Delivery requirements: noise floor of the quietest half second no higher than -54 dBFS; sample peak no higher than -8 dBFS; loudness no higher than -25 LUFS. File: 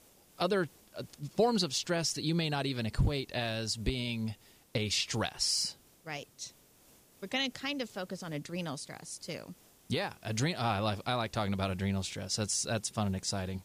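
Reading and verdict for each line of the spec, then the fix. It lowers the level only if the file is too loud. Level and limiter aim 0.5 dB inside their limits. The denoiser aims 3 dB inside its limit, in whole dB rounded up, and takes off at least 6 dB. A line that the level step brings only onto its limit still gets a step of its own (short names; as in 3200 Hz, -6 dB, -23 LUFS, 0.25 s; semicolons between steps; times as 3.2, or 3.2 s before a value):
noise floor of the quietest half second -62 dBFS: OK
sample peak -18.0 dBFS: OK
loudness -33.5 LUFS: OK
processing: none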